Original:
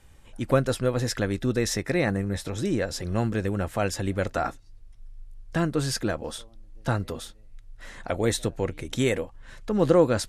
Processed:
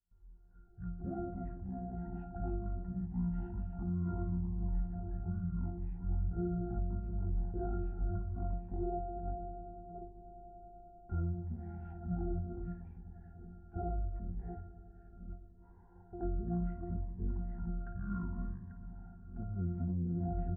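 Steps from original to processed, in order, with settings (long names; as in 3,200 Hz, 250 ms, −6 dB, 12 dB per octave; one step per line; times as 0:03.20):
delay that plays each chunk backwards 295 ms, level −7.5 dB
transistor ladder low-pass 3,200 Hz, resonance 45%
parametric band 88 Hz +3 dB
double-tracking delay 27 ms −12 dB
noise gate with hold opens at −52 dBFS
resonances in every octave F, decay 0.3 s
spring reverb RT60 3.3 s, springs 48 ms, chirp 65 ms, DRR 10.5 dB
brickwall limiter −39 dBFS, peak gain reduction 10 dB
wrong playback speed 15 ips tape played at 7.5 ips
dynamic equaliser 130 Hz, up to −4 dB, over −56 dBFS, Q 0.85
phaser whose notches keep moving one way falling 0.71 Hz
level +14 dB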